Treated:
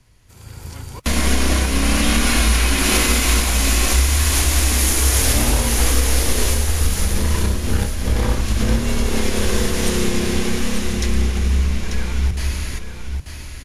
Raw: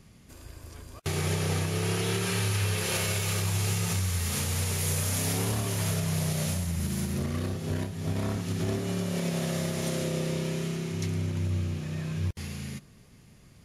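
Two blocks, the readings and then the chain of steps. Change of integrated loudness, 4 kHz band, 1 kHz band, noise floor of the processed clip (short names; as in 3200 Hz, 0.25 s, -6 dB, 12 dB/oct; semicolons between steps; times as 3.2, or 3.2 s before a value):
+11.0 dB, +13.0 dB, +12.5 dB, -36 dBFS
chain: AGC gain up to 12.5 dB; frequency shift -160 Hz; echo 0.89 s -7.5 dB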